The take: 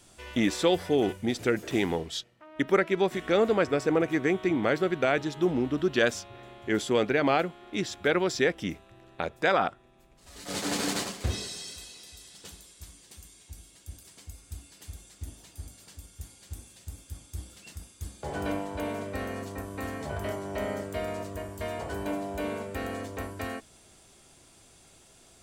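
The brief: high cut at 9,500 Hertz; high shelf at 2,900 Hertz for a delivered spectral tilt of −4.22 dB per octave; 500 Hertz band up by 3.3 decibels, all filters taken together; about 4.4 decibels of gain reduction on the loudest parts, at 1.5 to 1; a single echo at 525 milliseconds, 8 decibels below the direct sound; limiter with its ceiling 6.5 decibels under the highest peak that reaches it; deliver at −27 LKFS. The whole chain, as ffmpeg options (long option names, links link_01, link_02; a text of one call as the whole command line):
ffmpeg -i in.wav -af "lowpass=9500,equalizer=frequency=500:width_type=o:gain=4,highshelf=frequency=2900:gain=4.5,acompressor=threshold=-28dB:ratio=1.5,alimiter=limit=-17.5dB:level=0:latency=1,aecho=1:1:525:0.398,volume=3.5dB" out.wav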